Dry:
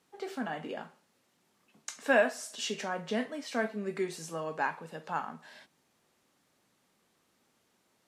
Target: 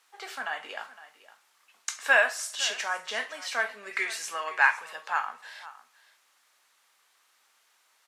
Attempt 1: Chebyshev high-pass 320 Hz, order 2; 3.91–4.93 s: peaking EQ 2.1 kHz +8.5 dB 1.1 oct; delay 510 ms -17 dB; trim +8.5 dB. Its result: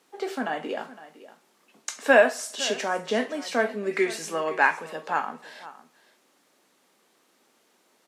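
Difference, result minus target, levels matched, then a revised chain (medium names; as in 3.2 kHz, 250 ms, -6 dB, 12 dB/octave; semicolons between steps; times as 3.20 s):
250 Hz band +19.5 dB
Chebyshev high-pass 1.2 kHz, order 2; 3.91–4.93 s: peaking EQ 2.1 kHz +8.5 dB 1.1 oct; delay 510 ms -17 dB; trim +8.5 dB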